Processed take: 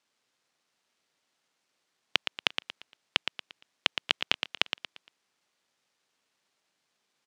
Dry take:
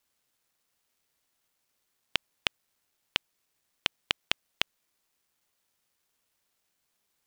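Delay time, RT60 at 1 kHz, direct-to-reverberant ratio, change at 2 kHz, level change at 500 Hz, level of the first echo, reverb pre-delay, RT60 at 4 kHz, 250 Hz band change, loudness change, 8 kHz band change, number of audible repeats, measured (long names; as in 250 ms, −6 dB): 116 ms, no reverb audible, no reverb audible, +3.5 dB, +3.5 dB, −8.0 dB, no reverb audible, no reverb audible, +3.0 dB, +3.0 dB, −0.5 dB, 4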